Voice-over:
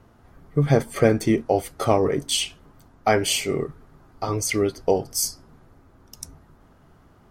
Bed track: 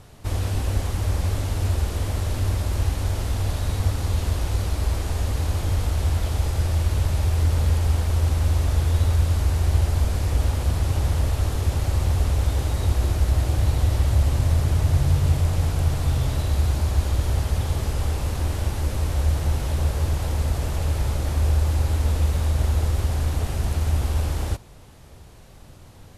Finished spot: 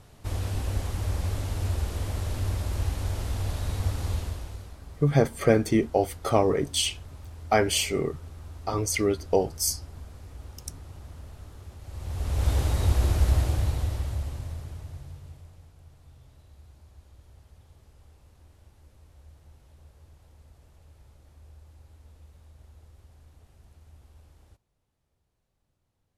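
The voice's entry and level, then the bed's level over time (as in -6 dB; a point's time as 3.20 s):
4.45 s, -2.5 dB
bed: 4.13 s -5.5 dB
4.80 s -22 dB
11.78 s -22 dB
12.49 s -1.5 dB
13.33 s -1.5 dB
15.72 s -31 dB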